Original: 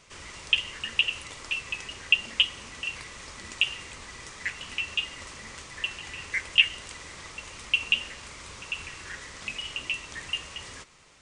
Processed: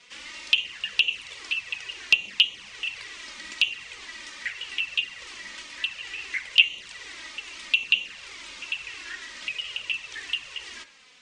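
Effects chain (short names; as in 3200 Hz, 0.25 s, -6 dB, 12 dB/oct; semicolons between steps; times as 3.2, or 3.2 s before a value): weighting filter D; envelope flanger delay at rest 4.2 ms, full sweep at -12.5 dBFS; high shelf 4800 Hz -7.5 dB; in parallel at +1 dB: compressor, threshold -34 dBFS, peak gain reduction 26 dB; on the sum: frequency shift -25 Hz; de-hum 85.91 Hz, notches 29; gain -6 dB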